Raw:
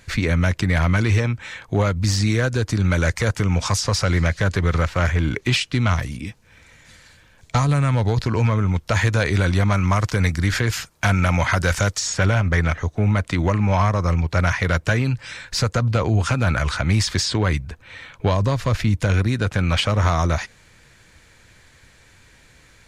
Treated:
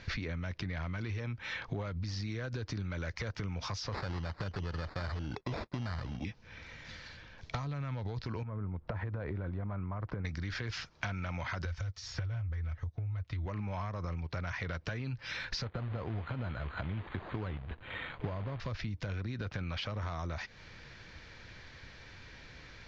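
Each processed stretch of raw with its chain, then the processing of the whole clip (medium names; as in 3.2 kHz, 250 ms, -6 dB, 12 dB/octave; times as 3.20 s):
3.92–6.25 s: expander -31 dBFS + sample-rate reducer 3 kHz
8.43–10.25 s: low-pass 1.1 kHz + compression 10:1, threshold -25 dBFS
11.65–13.46 s: resonant low shelf 140 Hz +10.5 dB, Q 1.5 + comb of notches 200 Hz + upward expansion, over -21 dBFS
15.64–18.60 s: de-esser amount 90% + companded quantiser 4-bit + decimation joined by straight lines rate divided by 8×
whole clip: peak limiter -16 dBFS; compression 16:1, threshold -34 dBFS; steep low-pass 5.7 kHz 48 dB/octave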